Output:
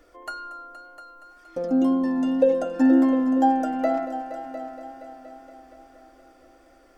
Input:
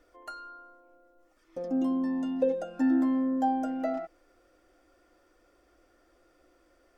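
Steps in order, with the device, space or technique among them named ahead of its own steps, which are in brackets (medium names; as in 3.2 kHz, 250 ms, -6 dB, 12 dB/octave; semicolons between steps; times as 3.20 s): multi-head tape echo (multi-head delay 235 ms, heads all three, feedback 52%, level -15.5 dB; wow and flutter 18 cents); trim +7.5 dB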